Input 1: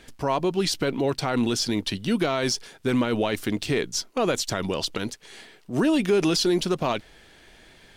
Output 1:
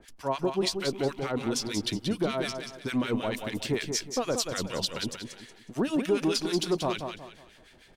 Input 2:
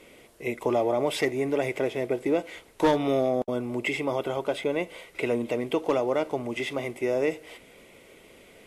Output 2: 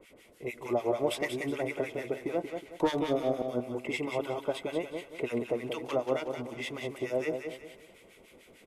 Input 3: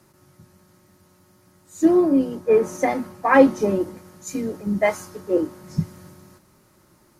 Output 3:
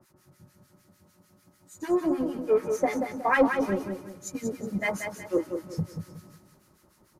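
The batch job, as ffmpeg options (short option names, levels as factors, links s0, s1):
-filter_complex "[0:a]acrossover=split=590|3300[s0][s1][s2];[s0]asoftclip=type=tanh:threshold=0.126[s3];[s3][s1][s2]amix=inputs=3:normalize=0,acrossover=split=1200[s4][s5];[s4]aeval=exprs='val(0)*(1-1/2+1/2*cos(2*PI*6.7*n/s))':c=same[s6];[s5]aeval=exprs='val(0)*(1-1/2-1/2*cos(2*PI*6.7*n/s))':c=same[s7];[s6][s7]amix=inputs=2:normalize=0,aecho=1:1:183|366|549|732:0.473|0.156|0.0515|0.017,volume=0.891"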